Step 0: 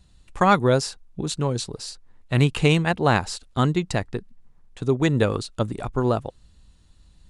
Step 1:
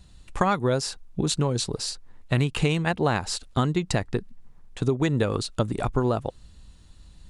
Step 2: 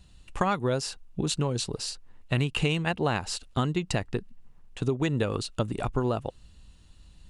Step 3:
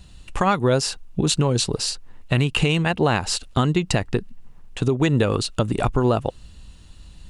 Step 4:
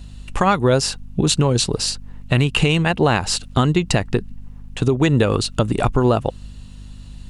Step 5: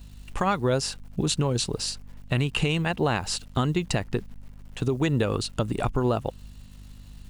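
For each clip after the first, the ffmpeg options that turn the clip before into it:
-af "acompressor=threshold=-24dB:ratio=6,volume=4.5dB"
-af "equalizer=f=2.8k:t=o:w=0.21:g=7,volume=-3.5dB"
-af "alimiter=limit=-17.5dB:level=0:latency=1:release=86,volume=9dB"
-af "aeval=exprs='val(0)+0.01*(sin(2*PI*50*n/s)+sin(2*PI*2*50*n/s)/2+sin(2*PI*3*50*n/s)/3+sin(2*PI*4*50*n/s)/4+sin(2*PI*5*50*n/s)/5)':c=same,volume=3dB"
-af "acrusher=bits=9:dc=4:mix=0:aa=0.000001,volume=-8dB"

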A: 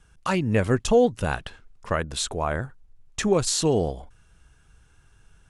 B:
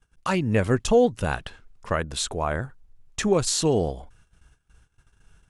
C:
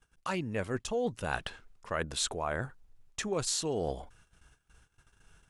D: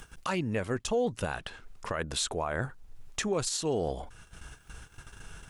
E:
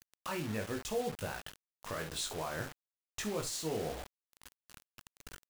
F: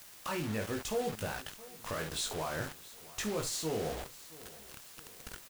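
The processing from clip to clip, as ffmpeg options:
-af "agate=range=-17dB:threshold=-54dB:ratio=16:detection=peak"
-af "areverse,acompressor=threshold=-28dB:ratio=6,areverse,lowshelf=f=220:g=-6.5"
-filter_complex "[0:a]asplit=2[a][b];[b]acompressor=mode=upward:threshold=-37dB:ratio=2.5,volume=2dB[c];[a][c]amix=inputs=2:normalize=0,alimiter=limit=-20.5dB:level=0:latency=1:release=208"
-af "aecho=1:1:19|50|70:0.631|0.251|0.237,acrusher=bits=5:mix=0:aa=0.000001,volume=-8.5dB"
-af "aeval=exprs='val(0)+0.5*0.00841*sgn(val(0))':c=same,aecho=1:1:670|1340|2010|2680:0.1|0.047|0.0221|0.0104"

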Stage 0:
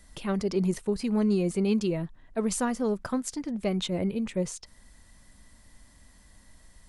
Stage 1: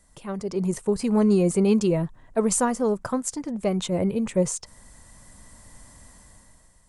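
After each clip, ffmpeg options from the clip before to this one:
-af "equalizer=f=125:t=o:w=1:g=7,equalizer=f=500:t=o:w=1:g=5,equalizer=f=1k:t=o:w=1:g=6,equalizer=f=4k:t=o:w=1:g=-3,equalizer=f=8k:t=o:w=1:g=9,dynaudnorm=f=210:g=7:m=12dB,volume=-8dB"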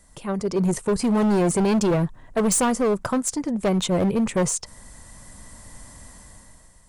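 -af "asoftclip=type=hard:threshold=-22dB,volume=5dB"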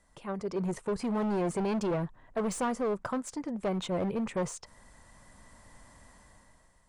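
-filter_complex "[0:a]asplit=2[a][b];[b]highpass=f=720:p=1,volume=5dB,asoftclip=type=tanh:threshold=-16.5dB[c];[a][c]amix=inputs=2:normalize=0,lowpass=f=1.9k:p=1,volume=-6dB,volume=-6.5dB"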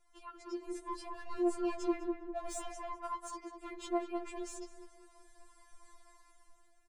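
-filter_complex "[0:a]asplit=2[a][b];[b]adelay=201,lowpass=f=1.3k:p=1,volume=-4dB,asplit=2[c][d];[d]adelay=201,lowpass=f=1.3k:p=1,volume=0.42,asplit=2[e][f];[f]adelay=201,lowpass=f=1.3k:p=1,volume=0.42,asplit=2[g][h];[h]adelay=201,lowpass=f=1.3k:p=1,volume=0.42,asplit=2[i][j];[j]adelay=201,lowpass=f=1.3k:p=1,volume=0.42[k];[c][e][g][i][k]amix=inputs=5:normalize=0[l];[a][l]amix=inputs=2:normalize=0,afftfilt=real='re*4*eq(mod(b,16),0)':imag='im*4*eq(mod(b,16),0)':win_size=2048:overlap=0.75,volume=-3.5dB"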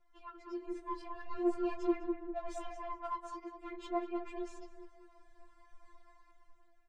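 -af "adynamicsmooth=sensitivity=6.5:basefreq=3.4k,flanger=delay=5.5:depth=9.9:regen=-37:speed=0.45:shape=triangular,volume=4dB"

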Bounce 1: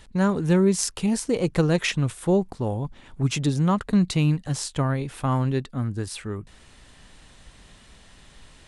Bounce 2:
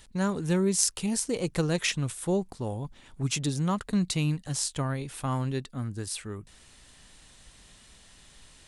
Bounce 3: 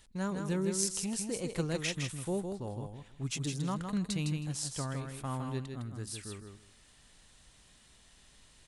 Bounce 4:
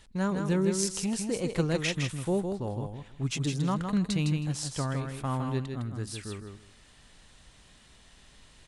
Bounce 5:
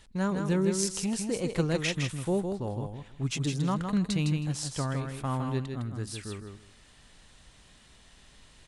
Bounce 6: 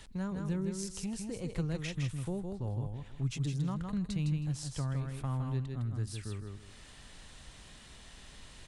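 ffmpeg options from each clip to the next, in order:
-af "highshelf=f=3.9k:g=10.5,volume=-6.5dB"
-af "aecho=1:1:159|318|477:0.531|0.0903|0.0153,volume=-7.5dB"
-af "highshelf=f=6.8k:g=-9.5,volume=6dB"
-af anull
-filter_complex "[0:a]acrossover=split=120[a][b];[b]acompressor=threshold=-56dB:ratio=2[c];[a][c]amix=inputs=2:normalize=0,volume=4.5dB"

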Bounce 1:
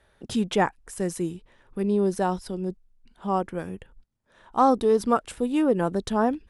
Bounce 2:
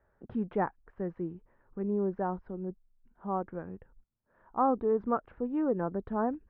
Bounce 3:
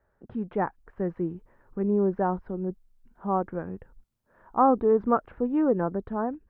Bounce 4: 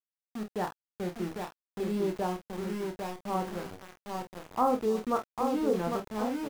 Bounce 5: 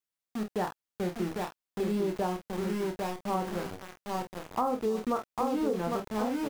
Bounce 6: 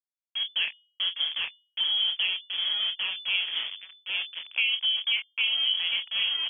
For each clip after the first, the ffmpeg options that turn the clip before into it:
-af "lowpass=f=1.6k:w=0.5412,lowpass=f=1.6k:w=1.3066,volume=-7.5dB"
-af "dynaudnorm=f=110:g=13:m=6.5dB"
-filter_complex "[0:a]asplit=2[a][b];[b]adelay=800,lowpass=f=1.8k:p=1,volume=-4.5dB,asplit=2[c][d];[d]adelay=800,lowpass=f=1.8k:p=1,volume=0.37,asplit=2[e][f];[f]adelay=800,lowpass=f=1.8k:p=1,volume=0.37,asplit=2[g][h];[h]adelay=800,lowpass=f=1.8k:p=1,volume=0.37,asplit=2[i][j];[j]adelay=800,lowpass=f=1.8k:p=1,volume=0.37[k];[c][e][g][i][k]amix=inputs=5:normalize=0[l];[a][l]amix=inputs=2:normalize=0,aeval=exprs='val(0)*gte(abs(val(0)),0.0266)':c=same,asplit=2[m][n];[n]aecho=0:1:28|47:0.447|0.299[o];[m][o]amix=inputs=2:normalize=0,volume=-6.5dB"
-af "acompressor=threshold=-29dB:ratio=6,volume=3.5dB"
-af "anlmdn=0.251,bandreject=f=296.1:t=h:w=4,bandreject=f=592.2:t=h:w=4,lowpass=f=3k:t=q:w=0.5098,lowpass=f=3k:t=q:w=0.6013,lowpass=f=3k:t=q:w=0.9,lowpass=f=3k:t=q:w=2.563,afreqshift=-3500,volume=3dB"

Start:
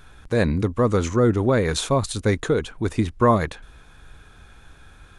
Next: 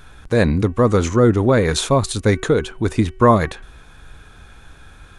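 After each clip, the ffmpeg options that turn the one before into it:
-af "bandreject=f=377.2:t=h:w=4,bandreject=f=754.4:t=h:w=4,bandreject=f=1.1316k:t=h:w=4,bandreject=f=1.5088k:t=h:w=4,bandreject=f=1.886k:t=h:w=4,bandreject=f=2.2632k:t=h:w=4,bandreject=f=2.6404k:t=h:w=4,bandreject=f=3.0176k:t=h:w=4,volume=4.5dB"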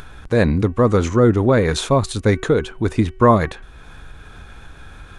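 -af "highshelf=f=4.9k:g=-6,acompressor=mode=upward:threshold=-31dB:ratio=2.5"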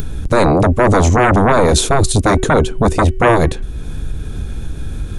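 -filter_complex "[0:a]acrossover=split=430|1600[a][b][c];[a]aeval=exprs='0.531*sin(PI/2*6.31*val(0)/0.531)':c=same[d];[c]crystalizer=i=4.5:c=0[e];[d][b][e]amix=inputs=3:normalize=0,volume=-2.5dB"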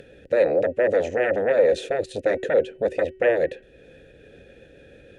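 -filter_complex "[0:a]asplit=3[a][b][c];[a]bandpass=f=530:t=q:w=8,volume=0dB[d];[b]bandpass=f=1.84k:t=q:w=8,volume=-6dB[e];[c]bandpass=f=2.48k:t=q:w=8,volume=-9dB[f];[d][e][f]amix=inputs=3:normalize=0,volume=1.5dB"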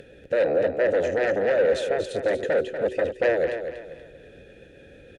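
-af "asoftclip=type=tanh:threshold=-15dB,aecho=1:1:240|480|720|960:0.376|0.128|0.0434|0.0148"

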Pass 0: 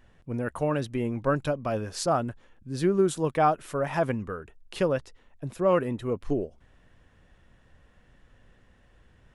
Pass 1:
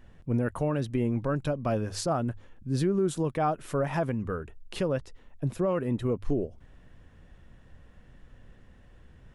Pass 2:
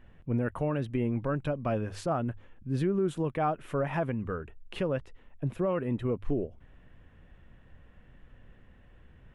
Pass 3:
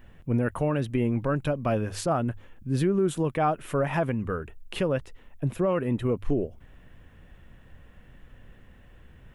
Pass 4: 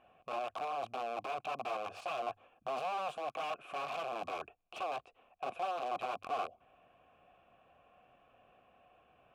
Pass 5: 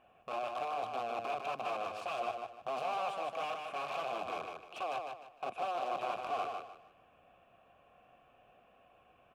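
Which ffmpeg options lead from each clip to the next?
-af "lowshelf=f=370:g=7,bandreject=f=50:t=h:w=6,bandreject=f=100:t=h:w=6,alimiter=limit=-18dB:level=0:latency=1:release=246"
-af "highshelf=f=3.7k:t=q:w=1.5:g=-8,volume=-2dB"
-af "crystalizer=i=1.5:c=0,volume=4dB"
-filter_complex "[0:a]alimiter=level_in=1dB:limit=-24dB:level=0:latency=1:release=21,volume=-1dB,aeval=exprs='(mod(26.6*val(0)+1,2)-1)/26.6':c=same,asplit=3[a][b][c];[a]bandpass=f=730:t=q:w=8,volume=0dB[d];[b]bandpass=f=1.09k:t=q:w=8,volume=-6dB[e];[c]bandpass=f=2.44k:t=q:w=8,volume=-9dB[f];[d][e][f]amix=inputs=3:normalize=0,volume=7dB"
-af "aecho=1:1:152|304|456|608:0.562|0.169|0.0506|0.0152"

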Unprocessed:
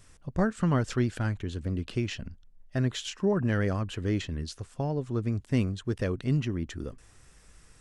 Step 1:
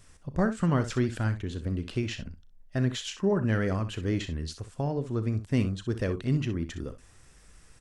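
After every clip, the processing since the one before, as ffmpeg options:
-af "aecho=1:1:36|63:0.158|0.251"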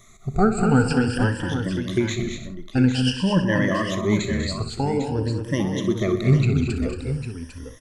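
-af "afftfilt=real='re*pow(10,23/40*sin(2*PI*(1.2*log(max(b,1)*sr/1024/100)/log(2)-(0.5)*(pts-256)/sr)))':imag='im*pow(10,23/40*sin(2*PI*(1.2*log(max(b,1)*sr/1024/100)/log(2)-(0.5)*(pts-256)/sr)))':win_size=1024:overlap=0.75,aecho=1:1:126|195|227|319|801:0.178|0.316|0.422|0.158|0.316,volume=2.5dB"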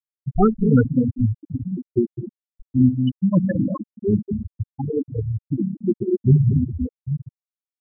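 -af "afftfilt=real='re*gte(hypot(re,im),0.501)':imag='im*gte(hypot(re,im),0.501)':win_size=1024:overlap=0.75,volume=3dB"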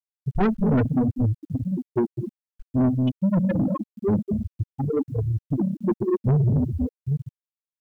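-af "aresample=16000,asoftclip=type=tanh:threshold=-17.5dB,aresample=44100,acrusher=bits=10:mix=0:aa=0.000001,volume=1.5dB"

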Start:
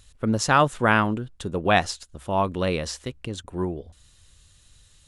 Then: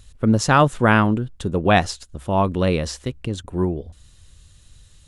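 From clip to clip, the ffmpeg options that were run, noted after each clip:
-af "lowshelf=f=410:g=6.5,volume=1.5dB"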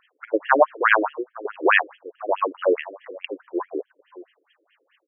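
-filter_complex "[0:a]asplit=2[a][b];[b]adelay=513.1,volume=-18dB,highshelf=f=4k:g=-11.5[c];[a][c]amix=inputs=2:normalize=0,afftfilt=real='re*between(b*sr/1024,380*pow(2400/380,0.5+0.5*sin(2*PI*4.7*pts/sr))/1.41,380*pow(2400/380,0.5+0.5*sin(2*PI*4.7*pts/sr))*1.41)':imag='im*between(b*sr/1024,380*pow(2400/380,0.5+0.5*sin(2*PI*4.7*pts/sr))/1.41,380*pow(2400/380,0.5+0.5*sin(2*PI*4.7*pts/sr))*1.41)':win_size=1024:overlap=0.75,volume=6dB"

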